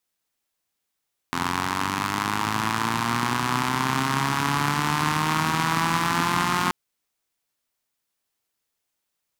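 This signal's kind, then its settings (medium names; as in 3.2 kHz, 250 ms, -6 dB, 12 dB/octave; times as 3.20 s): four-cylinder engine model, changing speed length 5.38 s, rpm 2600, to 5400, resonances 150/240/990 Hz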